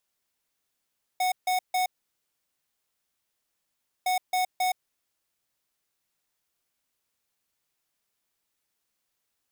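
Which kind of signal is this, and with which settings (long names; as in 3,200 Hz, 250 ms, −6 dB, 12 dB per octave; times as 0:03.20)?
beeps in groups square 737 Hz, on 0.12 s, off 0.15 s, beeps 3, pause 2.20 s, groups 2, −25 dBFS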